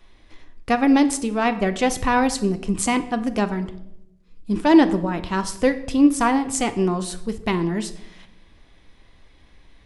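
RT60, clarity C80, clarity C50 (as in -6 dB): 0.80 s, 16.5 dB, 14.0 dB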